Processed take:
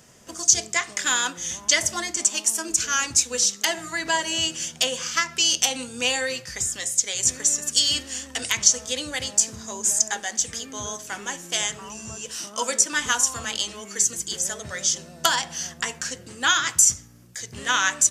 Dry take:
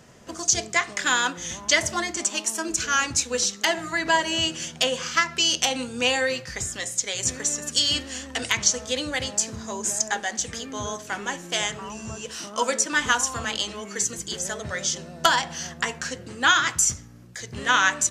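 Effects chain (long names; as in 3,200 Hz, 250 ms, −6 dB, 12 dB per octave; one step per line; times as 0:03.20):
high-shelf EQ 4,400 Hz +12 dB
notch filter 4,100 Hz, Q 22
level −4 dB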